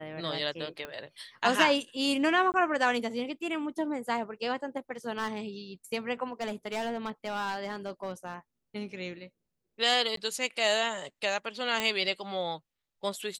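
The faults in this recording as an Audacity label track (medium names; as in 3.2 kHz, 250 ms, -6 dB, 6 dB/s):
0.850000	0.850000	pop -23 dBFS
2.520000	2.540000	dropout 19 ms
5.180000	5.380000	clipped -25.5 dBFS
6.320000	8.350000	clipped -28.5 dBFS
10.160000	10.170000	dropout
11.800000	11.800000	pop -13 dBFS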